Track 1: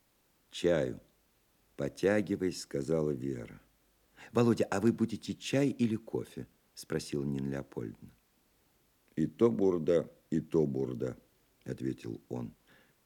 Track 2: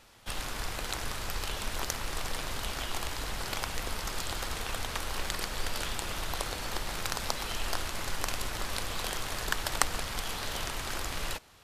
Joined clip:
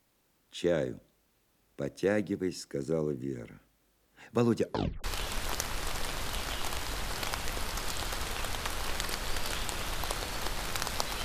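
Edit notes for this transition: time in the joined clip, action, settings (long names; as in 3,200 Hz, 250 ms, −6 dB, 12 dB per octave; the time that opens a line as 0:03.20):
track 1
0:04.59: tape stop 0.45 s
0:05.04: continue with track 2 from 0:01.34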